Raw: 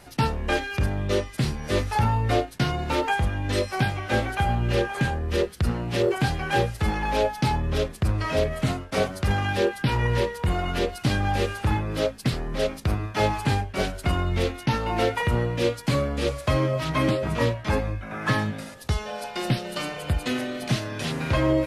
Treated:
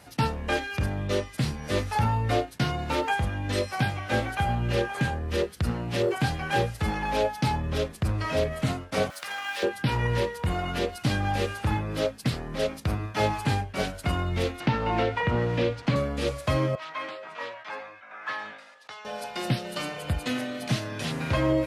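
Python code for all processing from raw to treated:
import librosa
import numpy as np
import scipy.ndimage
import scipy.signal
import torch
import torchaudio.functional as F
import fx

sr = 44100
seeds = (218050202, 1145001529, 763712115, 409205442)

y = fx.chain(x, sr, fx.zero_step(step_db=-38.0),
    fx.highpass(hz=1100.0, slope=12),
    fx.room_flutter(wall_m=11.0, rt60_s=0.25), at=(9.1, 9.63))
y = fx.chain(y, sr, fx.delta_hold(step_db=-39.5),
    fx.lowpass(hz=3600.0, slope=12),
    fx.band_squash(depth_pct=100), at=(14.6, 15.96))
y = fx.chain(y, sr, fx.highpass(hz=1000.0, slope=12),
    fx.spacing_loss(db_at_10k=21),
    fx.sustainer(db_per_s=65.0), at=(16.75, 19.05))
y = scipy.signal.sosfilt(scipy.signal.butter(2, 60.0, 'highpass', fs=sr, output='sos'), y)
y = fx.notch(y, sr, hz=380.0, q=12.0)
y = F.gain(torch.from_numpy(y), -2.0).numpy()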